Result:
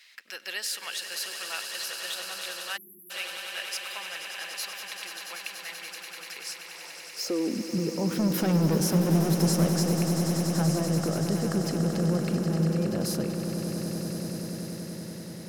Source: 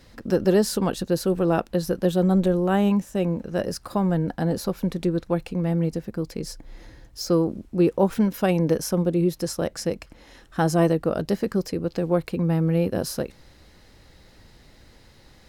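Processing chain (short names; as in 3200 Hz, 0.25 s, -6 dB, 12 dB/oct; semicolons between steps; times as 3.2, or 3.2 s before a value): high-pass sweep 2300 Hz -> 150 Hz, 6.17–7.87; 8.19–9.7 sample leveller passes 3; limiter -21.5 dBFS, peak gain reduction 16.5 dB; swelling echo 96 ms, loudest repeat 8, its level -11 dB; 2.77–3.11 spectral delete 400–11000 Hz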